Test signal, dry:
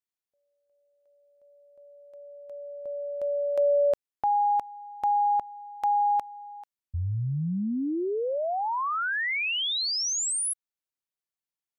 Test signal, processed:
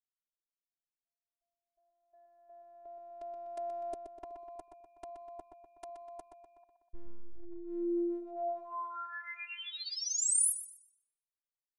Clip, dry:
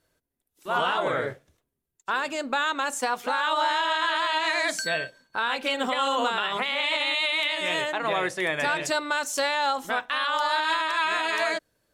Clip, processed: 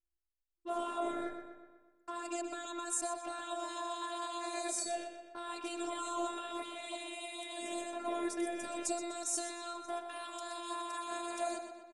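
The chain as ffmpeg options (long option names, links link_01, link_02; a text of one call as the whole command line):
ffmpeg -i in.wav -filter_complex "[0:a]anlmdn=0.631,highshelf=frequency=6500:gain=11,acrossover=split=720|7100[link_01][link_02][link_03];[link_02]acompressor=threshold=-38dB:ratio=16:attack=0.36:release=39:knee=6:detection=rms[link_04];[link_01][link_04][link_03]amix=inputs=3:normalize=0,afftfilt=real='hypot(re,im)*cos(PI*b)':imag='0':win_size=512:overlap=0.75,asplit=2[link_05][link_06];[link_06]adelay=124,lowpass=frequency=4900:poles=1,volume=-7dB,asplit=2[link_07][link_08];[link_08]adelay=124,lowpass=frequency=4900:poles=1,volume=0.55,asplit=2[link_09][link_10];[link_10]adelay=124,lowpass=frequency=4900:poles=1,volume=0.55,asplit=2[link_11][link_12];[link_12]adelay=124,lowpass=frequency=4900:poles=1,volume=0.55,asplit=2[link_13][link_14];[link_14]adelay=124,lowpass=frequency=4900:poles=1,volume=0.55,asplit=2[link_15][link_16];[link_16]adelay=124,lowpass=frequency=4900:poles=1,volume=0.55,asplit=2[link_17][link_18];[link_18]adelay=124,lowpass=frequency=4900:poles=1,volume=0.55[link_19];[link_05][link_07][link_09][link_11][link_13][link_15][link_17][link_19]amix=inputs=8:normalize=0,aresample=22050,aresample=44100,volume=-2dB" out.wav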